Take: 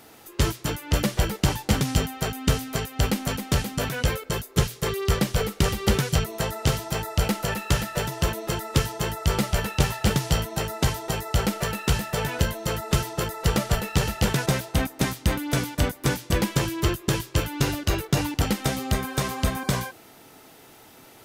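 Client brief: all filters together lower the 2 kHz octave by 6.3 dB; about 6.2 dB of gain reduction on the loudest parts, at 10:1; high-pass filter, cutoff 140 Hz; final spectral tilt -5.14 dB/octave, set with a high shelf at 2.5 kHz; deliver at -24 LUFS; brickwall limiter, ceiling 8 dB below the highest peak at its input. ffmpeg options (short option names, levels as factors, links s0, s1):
-af "highpass=140,equalizer=f=2000:t=o:g=-5.5,highshelf=f=2500:g=-6,acompressor=threshold=0.0447:ratio=10,volume=3.55,alimiter=limit=0.282:level=0:latency=1"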